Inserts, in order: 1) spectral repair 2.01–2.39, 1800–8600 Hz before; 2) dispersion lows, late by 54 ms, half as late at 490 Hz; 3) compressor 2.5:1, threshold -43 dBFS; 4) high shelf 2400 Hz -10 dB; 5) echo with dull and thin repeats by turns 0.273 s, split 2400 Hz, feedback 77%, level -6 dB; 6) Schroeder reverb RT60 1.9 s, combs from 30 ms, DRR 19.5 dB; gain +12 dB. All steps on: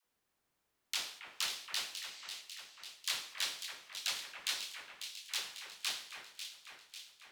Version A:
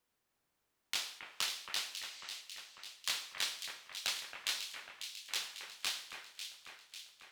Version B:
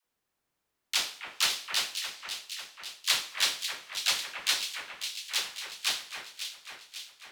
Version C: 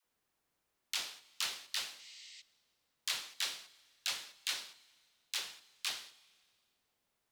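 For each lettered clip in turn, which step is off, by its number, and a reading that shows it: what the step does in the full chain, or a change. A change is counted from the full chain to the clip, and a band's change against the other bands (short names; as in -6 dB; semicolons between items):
2, crest factor change +3.0 dB; 3, mean gain reduction 6.0 dB; 5, echo-to-direct -4.5 dB to -19.5 dB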